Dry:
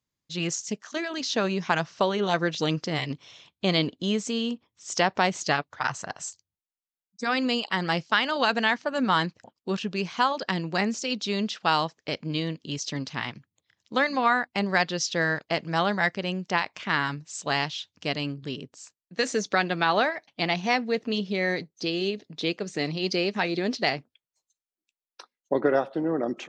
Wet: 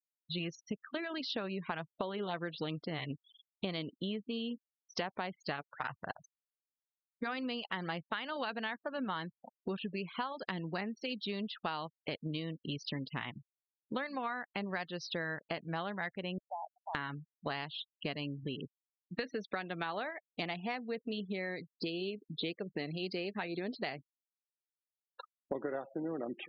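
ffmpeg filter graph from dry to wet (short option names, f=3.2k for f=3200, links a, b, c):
-filter_complex "[0:a]asettb=1/sr,asplit=3[a][b][c];[a]atrim=end=16.384[d];[b]atrim=start=16.38:end=16.95,asetpts=PTS-STARTPTS,afade=t=in:d=0.004:c=qsin,afade=t=out:st=0.566:d=0.004:c=qsin,asuperpass=centerf=750:order=4:qfactor=3.2,acompressor=threshold=-39dB:ratio=2.5:attack=3.2:release=140:knee=1:detection=peak[e];[c]atrim=start=16.946[f];[d][e]acrossfade=d=0.004:c1=hsin:c2=qsin[g];[g][f]acrossfade=d=0.004:c1=qsin:c2=hsin,lowpass=f=4.2k:w=0.5412,lowpass=f=4.2k:w=1.3066,afftfilt=real='re*gte(hypot(re,im),0.0141)':imag='im*gte(hypot(re,im),0.0141)':win_size=1024:overlap=0.75,acompressor=threshold=-38dB:ratio=6,volume=2dB"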